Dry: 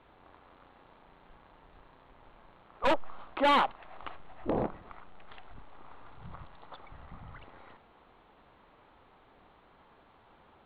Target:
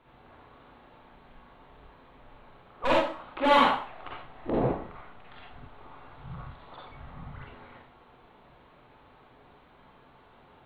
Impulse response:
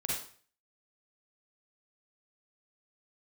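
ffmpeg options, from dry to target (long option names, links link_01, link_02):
-filter_complex "[1:a]atrim=start_sample=2205,afade=type=out:start_time=0.37:duration=0.01,atrim=end_sample=16758[link_01];[0:a][link_01]afir=irnorm=-1:irlink=0"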